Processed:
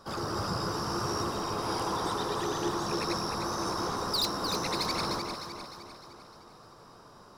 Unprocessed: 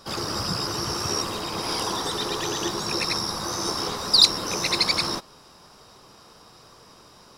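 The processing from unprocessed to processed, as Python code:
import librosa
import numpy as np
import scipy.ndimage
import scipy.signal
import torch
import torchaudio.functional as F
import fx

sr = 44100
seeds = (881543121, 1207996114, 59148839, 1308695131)

y = fx.high_shelf_res(x, sr, hz=1800.0, db=-6.0, q=1.5)
y = 10.0 ** (-20.5 / 20.0) * np.tanh(y / 10.0 ** (-20.5 / 20.0))
y = fx.echo_alternate(y, sr, ms=152, hz=1200.0, feedback_pct=71, wet_db=-3.5)
y = F.gain(torch.from_numpy(y), -3.5).numpy()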